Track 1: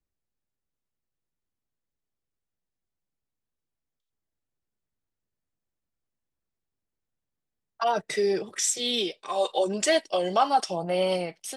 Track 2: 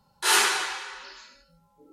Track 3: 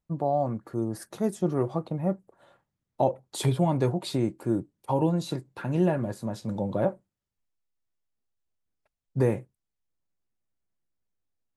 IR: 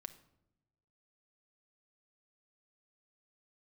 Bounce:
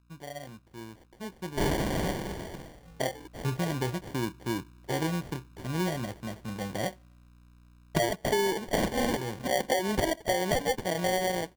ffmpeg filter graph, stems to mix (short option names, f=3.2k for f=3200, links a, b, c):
-filter_complex "[0:a]adelay=150,volume=1.5dB,asplit=2[a][b];[b]volume=-15.5dB[c];[1:a]acontrast=70,adelay=1350,volume=-8.5dB[d];[2:a]aeval=exprs='val(0)+0.00398*(sin(2*PI*60*n/s)+sin(2*PI*2*60*n/s)/2+sin(2*PI*3*60*n/s)/3+sin(2*PI*4*60*n/s)/4+sin(2*PI*5*60*n/s)/5)':c=same,volume=-16dB,asplit=3[e][f][g];[f]volume=-14dB[h];[g]apad=whole_len=516623[i];[a][i]sidechaincompress=threshold=-58dB:ratio=12:attack=24:release=229[j];[3:a]atrim=start_sample=2205[k];[c][h]amix=inputs=2:normalize=0[l];[l][k]afir=irnorm=-1:irlink=0[m];[j][d][e][m]amix=inputs=4:normalize=0,dynaudnorm=f=290:g=13:m=11dB,acrusher=samples=34:mix=1:aa=0.000001,acompressor=threshold=-24dB:ratio=10"